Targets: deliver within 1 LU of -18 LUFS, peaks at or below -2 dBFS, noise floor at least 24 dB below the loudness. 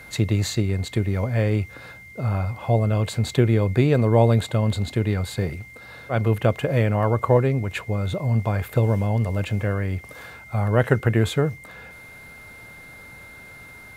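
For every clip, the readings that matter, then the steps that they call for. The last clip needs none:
steady tone 2.1 kHz; tone level -42 dBFS; loudness -22.5 LUFS; peak level -2.0 dBFS; loudness target -18.0 LUFS
-> band-stop 2.1 kHz, Q 30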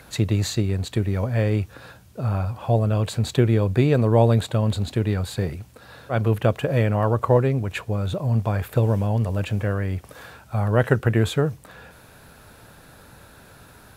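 steady tone not found; loudness -22.5 LUFS; peak level -2.5 dBFS; loudness target -18.0 LUFS
-> trim +4.5 dB; peak limiter -2 dBFS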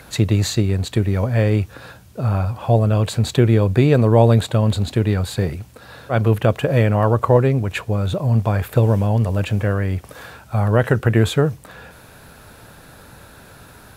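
loudness -18.0 LUFS; peak level -2.0 dBFS; noise floor -45 dBFS

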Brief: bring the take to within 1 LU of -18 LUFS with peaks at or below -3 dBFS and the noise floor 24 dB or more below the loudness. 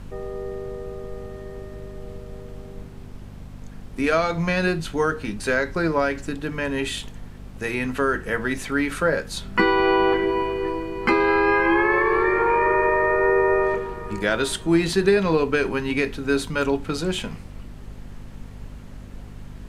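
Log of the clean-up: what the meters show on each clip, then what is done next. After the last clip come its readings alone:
hum 50 Hz; highest harmonic 250 Hz; hum level -38 dBFS; noise floor -40 dBFS; noise floor target -46 dBFS; loudness -22.0 LUFS; peak level -5.5 dBFS; loudness target -18.0 LUFS
-> de-hum 50 Hz, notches 5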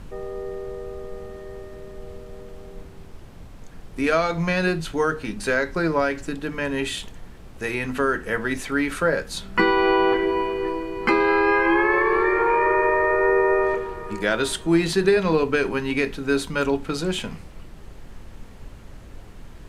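hum not found; noise floor -42 dBFS; noise floor target -46 dBFS
-> noise print and reduce 6 dB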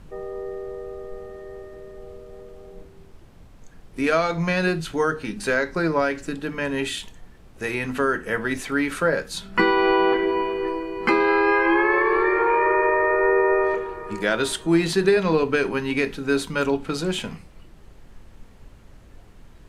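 noise floor -48 dBFS; loudness -22.0 LUFS; peak level -5.5 dBFS; loudness target -18.0 LUFS
-> trim +4 dB; peak limiter -3 dBFS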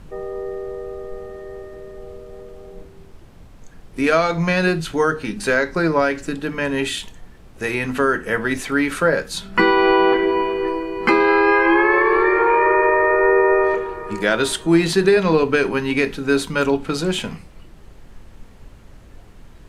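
loudness -18.0 LUFS; peak level -3.0 dBFS; noise floor -44 dBFS

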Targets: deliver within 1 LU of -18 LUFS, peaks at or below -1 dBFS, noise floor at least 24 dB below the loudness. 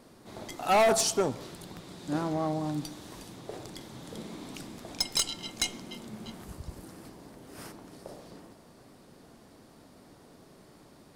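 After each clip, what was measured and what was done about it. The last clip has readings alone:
clipped samples 0.8%; clipping level -19.5 dBFS; loudness -31.0 LUFS; peak level -19.5 dBFS; loudness target -18.0 LUFS
-> clip repair -19.5 dBFS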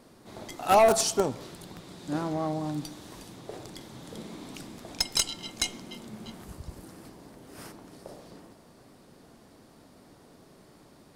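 clipped samples 0.0%; loudness -27.0 LUFS; peak level -10.5 dBFS; loudness target -18.0 LUFS
-> trim +9 dB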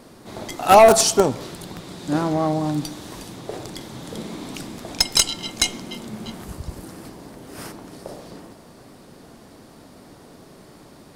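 loudness -18.0 LUFS; peak level -1.5 dBFS; noise floor -47 dBFS

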